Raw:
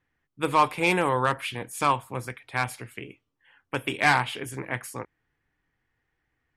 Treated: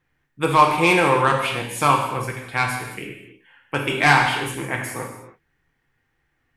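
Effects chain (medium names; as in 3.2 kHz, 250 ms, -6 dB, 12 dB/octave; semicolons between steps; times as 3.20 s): gated-style reverb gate 350 ms falling, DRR 0.5 dB; trim +4 dB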